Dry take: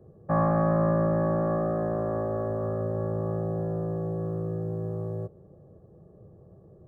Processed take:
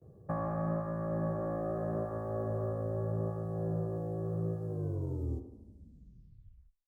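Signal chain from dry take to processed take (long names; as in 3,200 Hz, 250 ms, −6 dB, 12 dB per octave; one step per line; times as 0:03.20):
turntable brake at the end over 2.22 s
downward compressor, threshold −27 dBFS, peak gain reduction 7.5 dB
parametric band 78 Hz +5.5 dB 1.9 octaves
tape delay 74 ms, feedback 62%, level −7 dB, low-pass 1,800 Hz
noise gate with hold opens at −45 dBFS
bass and treble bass −1 dB, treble +8 dB
level −5.5 dB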